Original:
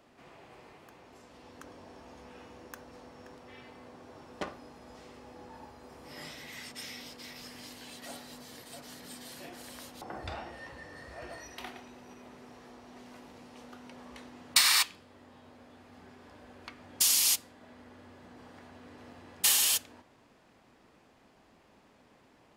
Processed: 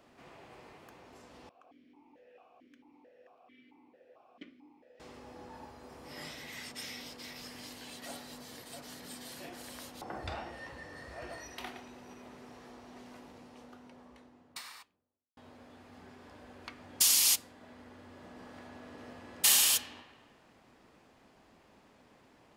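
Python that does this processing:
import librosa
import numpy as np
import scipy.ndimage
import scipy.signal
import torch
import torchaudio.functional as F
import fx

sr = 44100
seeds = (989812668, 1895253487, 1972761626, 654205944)

y = fx.vowel_held(x, sr, hz=4.5, at=(1.49, 5.0))
y = fx.studio_fade_out(y, sr, start_s=12.75, length_s=2.62)
y = fx.reverb_throw(y, sr, start_s=18.06, length_s=1.49, rt60_s=1.8, drr_db=2.5)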